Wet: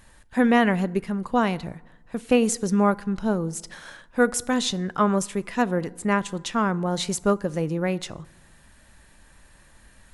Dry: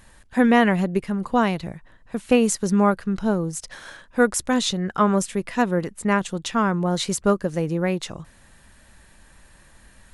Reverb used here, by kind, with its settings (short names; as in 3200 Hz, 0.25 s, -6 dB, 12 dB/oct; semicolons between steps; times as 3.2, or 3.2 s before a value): FDN reverb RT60 1 s, low-frequency decay 1.2×, high-frequency decay 0.55×, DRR 18.5 dB; gain -2 dB